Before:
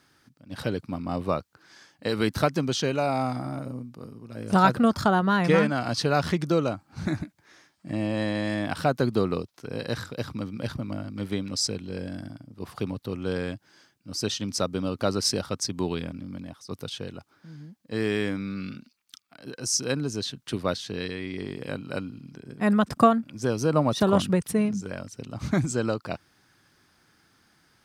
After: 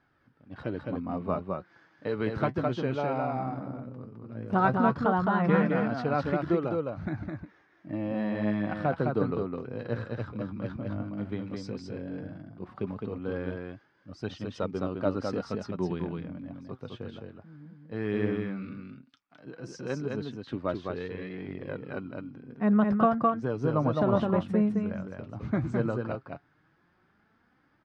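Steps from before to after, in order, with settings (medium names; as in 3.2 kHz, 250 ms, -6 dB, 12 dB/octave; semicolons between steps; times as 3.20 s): low-pass 1.8 kHz 12 dB/octave; delay 210 ms -3.5 dB; flange 0.14 Hz, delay 1.2 ms, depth 9.5 ms, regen +57%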